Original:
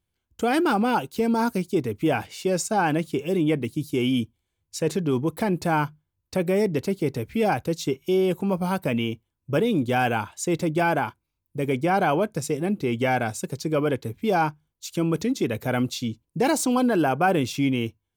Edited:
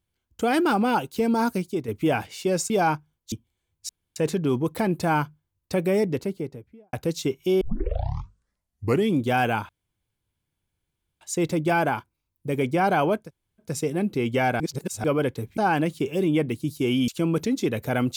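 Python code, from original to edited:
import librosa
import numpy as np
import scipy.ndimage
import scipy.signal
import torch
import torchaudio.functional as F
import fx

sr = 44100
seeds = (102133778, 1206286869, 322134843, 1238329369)

y = fx.studio_fade_out(x, sr, start_s=6.53, length_s=1.02)
y = fx.edit(y, sr, fx.fade_out_to(start_s=1.52, length_s=0.36, floor_db=-7.5),
    fx.swap(start_s=2.7, length_s=1.51, other_s=14.24, other_length_s=0.62),
    fx.insert_room_tone(at_s=4.78, length_s=0.27),
    fx.tape_start(start_s=8.23, length_s=1.58),
    fx.insert_room_tone(at_s=10.31, length_s=1.52),
    fx.insert_room_tone(at_s=12.33, length_s=0.43, crossfade_s=0.16),
    fx.reverse_span(start_s=13.27, length_s=0.44), tone=tone)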